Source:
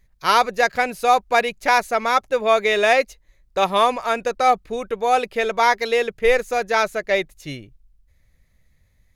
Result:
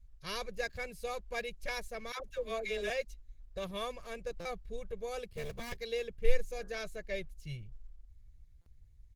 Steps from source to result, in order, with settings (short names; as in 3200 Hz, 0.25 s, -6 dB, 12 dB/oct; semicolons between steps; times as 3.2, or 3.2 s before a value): 5.28–5.78 cycle switcher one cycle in 3, muted; passive tone stack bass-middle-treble 10-0-1; comb 1.8 ms, depth 96%; 2.12–2.9 dispersion lows, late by 75 ms, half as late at 700 Hz; 6.42–6.87 de-hum 86.46 Hz, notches 19; stuck buffer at 4.4/8.61, samples 256, times 8; gain +4 dB; Opus 16 kbps 48000 Hz